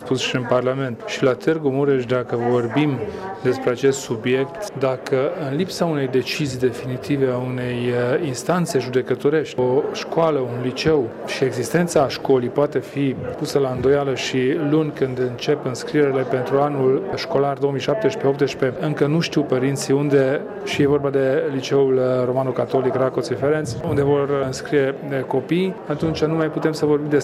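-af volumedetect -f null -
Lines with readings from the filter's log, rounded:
mean_volume: -19.9 dB
max_volume: -6.2 dB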